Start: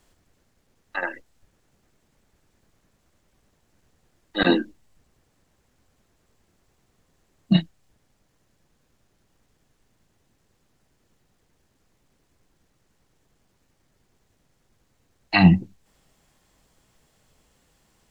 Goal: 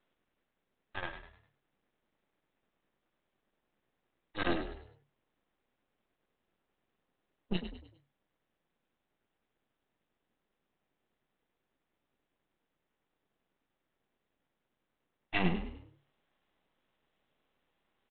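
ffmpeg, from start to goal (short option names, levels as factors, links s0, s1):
-filter_complex "[0:a]highpass=210,aresample=8000,aeval=exprs='max(val(0),0)':c=same,aresample=44100,asplit=5[s0][s1][s2][s3][s4];[s1]adelay=101,afreqshift=35,volume=0.316[s5];[s2]adelay=202,afreqshift=70,volume=0.114[s6];[s3]adelay=303,afreqshift=105,volume=0.0412[s7];[s4]adelay=404,afreqshift=140,volume=0.0148[s8];[s0][s5][s6][s7][s8]amix=inputs=5:normalize=0,volume=0.376"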